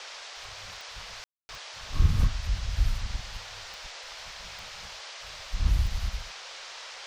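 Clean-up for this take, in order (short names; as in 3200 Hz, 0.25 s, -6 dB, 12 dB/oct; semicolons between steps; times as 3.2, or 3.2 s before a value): de-click; room tone fill 1.24–1.49; noise print and reduce 29 dB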